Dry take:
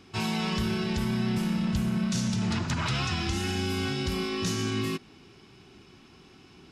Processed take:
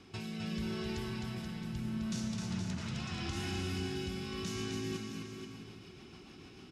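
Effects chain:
downward compressor 6 to 1, threshold −36 dBFS, peak gain reduction 12 dB
rotating-speaker cabinet horn 0.8 Hz, later 6.7 Hz, at 0:04.51
bouncing-ball delay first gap 260 ms, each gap 0.85×, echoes 5

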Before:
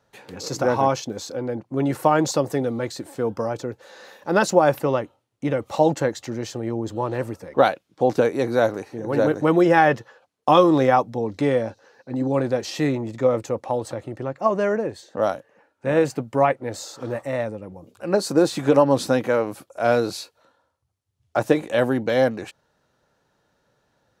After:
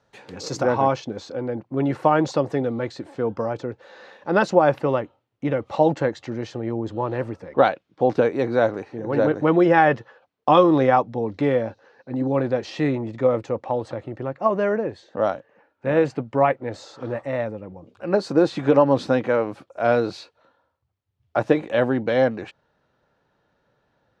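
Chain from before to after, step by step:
low-pass filter 6,800 Hz 12 dB per octave, from 0:00.63 3,500 Hz

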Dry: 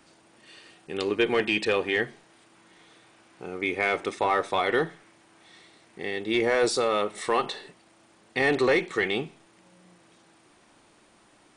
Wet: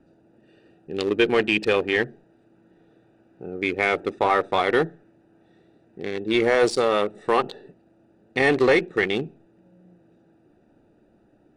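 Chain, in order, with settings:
adaptive Wiener filter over 41 samples
level +5 dB

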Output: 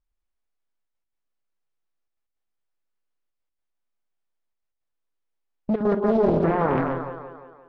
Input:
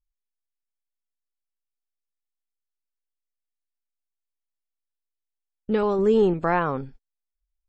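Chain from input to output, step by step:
low-pass filter 1,300 Hz 6 dB per octave
low-shelf EQ 86 Hz −9 dB
in parallel at +2 dB: compressor whose output falls as the input rises −27 dBFS, ratio −1
on the sum: brickwall limiter −14.5 dBFS, peak gain reduction 7 dB
gate pattern "xxxxxxxxx.x.x" 159 BPM −12 dB
on a send: echo with a time of its own for lows and highs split 380 Hz, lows 114 ms, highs 174 ms, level −3.5 dB
on the sum: highs frequency-modulated by the lows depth 0.73 ms

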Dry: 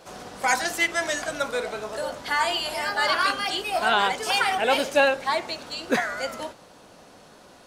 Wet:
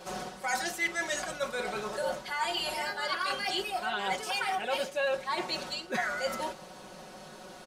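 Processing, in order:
reversed playback
downward compressor 6 to 1, threshold −32 dBFS, peak gain reduction 16.5 dB
reversed playback
comb filter 5.4 ms, depth 85%

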